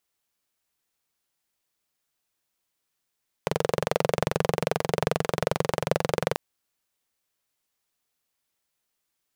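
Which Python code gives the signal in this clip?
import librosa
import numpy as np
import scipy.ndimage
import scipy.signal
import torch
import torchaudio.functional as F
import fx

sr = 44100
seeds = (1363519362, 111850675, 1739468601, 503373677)

y = fx.engine_single(sr, seeds[0], length_s=2.89, rpm=2700, resonances_hz=(160.0, 470.0))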